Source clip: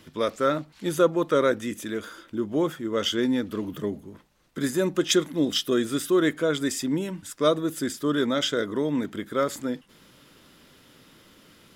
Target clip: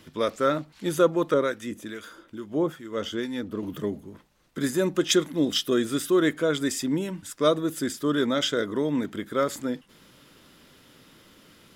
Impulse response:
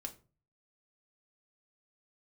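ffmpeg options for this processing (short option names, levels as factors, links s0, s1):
-filter_complex "[0:a]asettb=1/sr,asplit=3[s0][s1][s2];[s0]atrim=end=1.344[s3];[s1]atrim=start=1.34:end=3.63,asetpts=PTS-STARTPTS,afade=t=in:d=0.004:c=qsin,afade=t=out:st=2.286:d=0.004:c=qsin,acrossover=split=1200[s4][s5];[s4]aeval=exprs='val(0)*(1-0.7/2+0.7/2*cos(2*PI*2.3*n/s))':c=same[s6];[s5]aeval=exprs='val(0)*(1-0.7/2-0.7/2*cos(2*PI*2.3*n/s))':c=same[s7];[s6][s7]amix=inputs=2:normalize=0[s8];[s2]atrim=start=3.626[s9];[s3][s8]acrossfade=d=0.004:c1=hsin:c2=qsin[s10];[s10][s9]acrossfade=d=0.004:c1=qsin:c2=hsin"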